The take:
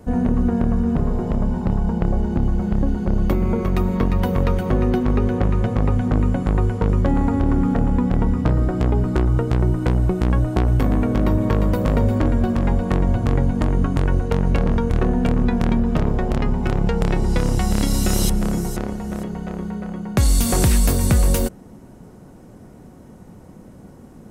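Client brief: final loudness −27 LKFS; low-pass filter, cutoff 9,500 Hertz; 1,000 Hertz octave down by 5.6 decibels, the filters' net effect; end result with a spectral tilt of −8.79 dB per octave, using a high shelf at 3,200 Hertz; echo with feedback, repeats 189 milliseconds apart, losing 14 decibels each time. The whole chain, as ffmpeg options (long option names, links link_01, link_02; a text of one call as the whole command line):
ffmpeg -i in.wav -af "lowpass=9500,equalizer=frequency=1000:width_type=o:gain=-7,highshelf=frequency=3200:gain=-7,aecho=1:1:189|378:0.2|0.0399,volume=-6.5dB" out.wav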